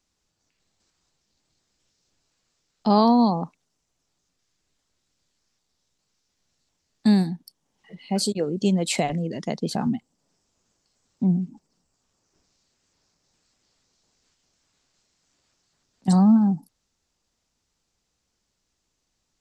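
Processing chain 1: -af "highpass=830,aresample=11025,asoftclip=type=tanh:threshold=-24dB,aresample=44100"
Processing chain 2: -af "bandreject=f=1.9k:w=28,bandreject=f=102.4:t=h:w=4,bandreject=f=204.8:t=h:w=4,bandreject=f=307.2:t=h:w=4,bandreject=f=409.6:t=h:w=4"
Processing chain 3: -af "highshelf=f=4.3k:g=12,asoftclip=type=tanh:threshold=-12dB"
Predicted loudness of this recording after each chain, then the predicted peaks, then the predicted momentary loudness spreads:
-35.0, -23.0, -23.5 LUFS; -21.0, -6.5, -12.0 dBFS; 18, 12, 12 LU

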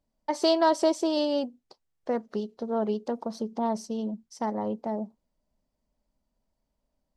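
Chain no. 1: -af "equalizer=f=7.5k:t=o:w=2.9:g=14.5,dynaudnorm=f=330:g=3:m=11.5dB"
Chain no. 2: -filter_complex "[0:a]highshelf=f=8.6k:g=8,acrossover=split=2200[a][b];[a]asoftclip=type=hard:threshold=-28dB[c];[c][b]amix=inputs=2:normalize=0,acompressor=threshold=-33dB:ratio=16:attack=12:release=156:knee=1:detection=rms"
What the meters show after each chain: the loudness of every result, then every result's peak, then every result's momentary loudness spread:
-19.0, -37.5 LUFS; -2.0, -25.0 dBFS; 7, 6 LU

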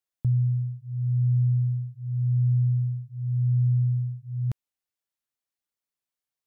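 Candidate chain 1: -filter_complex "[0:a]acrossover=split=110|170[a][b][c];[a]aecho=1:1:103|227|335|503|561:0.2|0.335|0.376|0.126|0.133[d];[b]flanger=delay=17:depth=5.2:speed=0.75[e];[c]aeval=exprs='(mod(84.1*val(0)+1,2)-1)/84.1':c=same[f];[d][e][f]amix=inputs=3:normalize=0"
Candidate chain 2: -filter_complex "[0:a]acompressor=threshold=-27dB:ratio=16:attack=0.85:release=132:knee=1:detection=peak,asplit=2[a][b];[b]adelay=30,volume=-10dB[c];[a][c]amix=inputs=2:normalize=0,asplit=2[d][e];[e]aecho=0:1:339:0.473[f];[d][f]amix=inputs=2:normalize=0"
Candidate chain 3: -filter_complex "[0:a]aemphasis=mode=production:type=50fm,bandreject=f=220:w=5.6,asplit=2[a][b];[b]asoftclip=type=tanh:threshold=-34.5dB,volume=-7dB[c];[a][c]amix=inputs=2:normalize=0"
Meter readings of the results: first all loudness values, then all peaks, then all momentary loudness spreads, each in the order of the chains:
-28.0, -31.0, -25.5 LUFS; -19.5, -23.5, -16.5 dBFS; 9, 7, 8 LU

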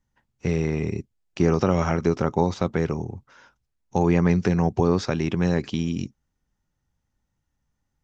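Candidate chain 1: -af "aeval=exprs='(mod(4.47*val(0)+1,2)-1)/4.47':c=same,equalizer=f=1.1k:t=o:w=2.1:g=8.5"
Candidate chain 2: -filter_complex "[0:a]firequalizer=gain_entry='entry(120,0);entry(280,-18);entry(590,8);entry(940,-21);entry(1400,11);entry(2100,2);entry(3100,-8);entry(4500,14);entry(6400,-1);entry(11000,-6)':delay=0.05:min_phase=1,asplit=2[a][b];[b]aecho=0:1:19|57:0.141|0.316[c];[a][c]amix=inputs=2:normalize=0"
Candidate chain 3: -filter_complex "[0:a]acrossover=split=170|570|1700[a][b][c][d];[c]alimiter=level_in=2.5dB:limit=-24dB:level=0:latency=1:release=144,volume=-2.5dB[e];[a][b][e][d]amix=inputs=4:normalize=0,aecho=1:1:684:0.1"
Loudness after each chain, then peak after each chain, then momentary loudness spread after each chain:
-20.0, -25.5, -24.0 LUFS; -4.5, -9.0, -8.0 dBFS; 12, 15, 11 LU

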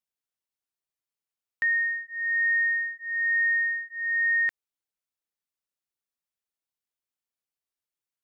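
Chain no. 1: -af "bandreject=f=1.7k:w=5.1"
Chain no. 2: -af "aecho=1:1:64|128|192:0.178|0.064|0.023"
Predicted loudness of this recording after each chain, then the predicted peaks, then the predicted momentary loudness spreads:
-28.0, -25.5 LUFS; -21.0, -20.0 dBFS; 6, 7 LU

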